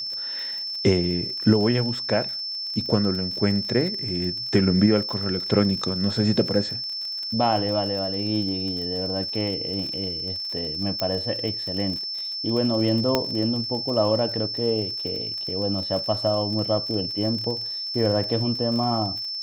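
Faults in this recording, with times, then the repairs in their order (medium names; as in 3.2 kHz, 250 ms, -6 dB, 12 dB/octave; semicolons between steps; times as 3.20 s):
crackle 48 per s -31 dBFS
whine 5.3 kHz -28 dBFS
11.00 s: pop -11 dBFS
13.15 s: pop -6 dBFS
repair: de-click; band-stop 5.3 kHz, Q 30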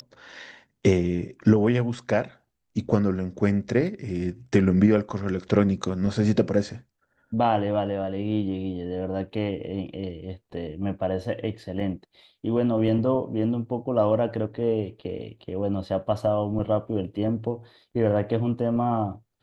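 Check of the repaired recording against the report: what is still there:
nothing left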